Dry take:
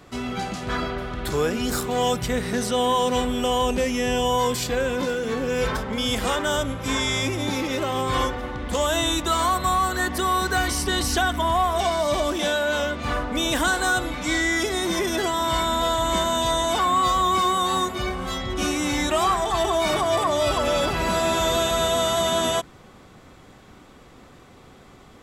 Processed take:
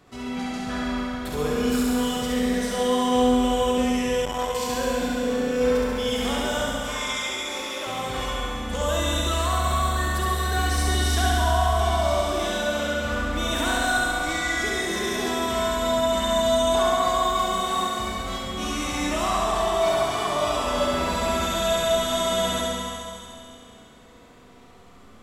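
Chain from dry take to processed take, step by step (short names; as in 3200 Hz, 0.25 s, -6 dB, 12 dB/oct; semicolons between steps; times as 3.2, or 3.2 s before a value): 6.79–7.87 HPF 530 Hz 12 dB/oct; flutter echo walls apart 11.7 m, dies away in 1.4 s; Schroeder reverb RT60 2.6 s, combs from 32 ms, DRR 0.5 dB; 4.25–4.7 core saturation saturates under 500 Hz; gain -7.5 dB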